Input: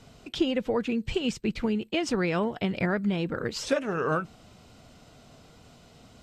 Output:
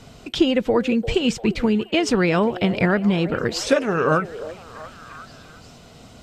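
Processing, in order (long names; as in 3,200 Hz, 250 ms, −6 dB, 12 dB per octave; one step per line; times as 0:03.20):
echo through a band-pass that steps 346 ms, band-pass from 510 Hz, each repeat 0.7 octaves, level −11 dB
level +8 dB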